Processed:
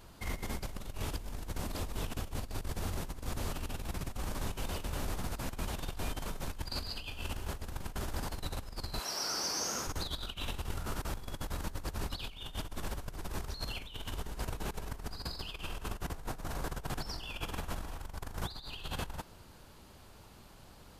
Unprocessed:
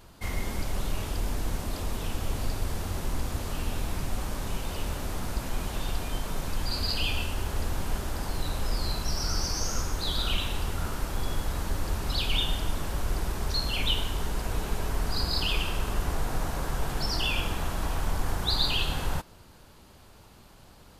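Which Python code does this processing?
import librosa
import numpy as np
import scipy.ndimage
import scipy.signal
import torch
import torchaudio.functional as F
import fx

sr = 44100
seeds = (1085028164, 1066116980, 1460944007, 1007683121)

y = fx.highpass(x, sr, hz=fx.line((8.98, 520.0), (9.86, 200.0)), slope=12, at=(8.98, 9.86), fade=0.02)
y = fx.over_compress(y, sr, threshold_db=-31.0, ratio=-0.5)
y = F.gain(torch.from_numpy(y), -6.0).numpy()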